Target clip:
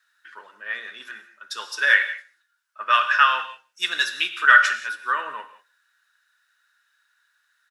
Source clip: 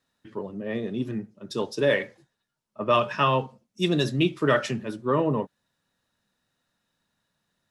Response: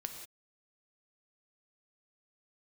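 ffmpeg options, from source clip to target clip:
-filter_complex "[0:a]highpass=f=1.5k:t=q:w=7.9,asplit=2[a][b];[b]adelay=157.4,volume=-29dB,highshelf=f=4k:g=-3.54[c];[a][c]amix=inputs=2:normalize=0,asplit=2[d][e];[1:a]atrim=start_sample=2205,highshelf=f=2.2k:g=10[f];[e][f]afir=irnorm=-1:irlink=0,volume=-1dB[g];[d][g]amix=inputs=2:normalize=0,volume=-3.5dB"

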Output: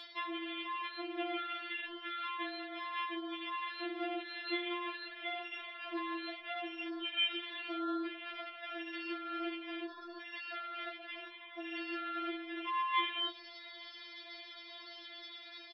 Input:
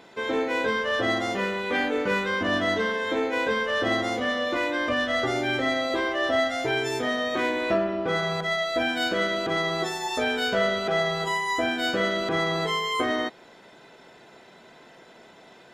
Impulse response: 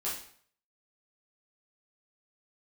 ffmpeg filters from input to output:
-filter_complex "[0:a]afwtdn=0.0355,equalizer=f=4.2k:w=0.46:g=14.5,areverse,acompressor=threshold=-34dB:ratio=20,areverse,alimiter=level_in=11.5dB:limit=-24dB:level=0:latency=1:release=40,volume=-11.5dB,acrossover=split=610[a][b];[b]acompressor=mode=upward:threshold=-55dB:ratio=2.5[c];[a][c]amix=inputs=2:normalize=0,crystalizer=i=4.5:c=0,aresample=11025,aresample=44100,asplit=2[d][e];[e]adelay=18,volume=-7dB[f];[d][f]amix=inputs=2:normalize=0,afftfilt=real='re*4*eq(mod(b,16),0)':imag='im*4*eq(mod(b,16),0)':win_size=2048:overlap=0.75,volume=6.5dB"

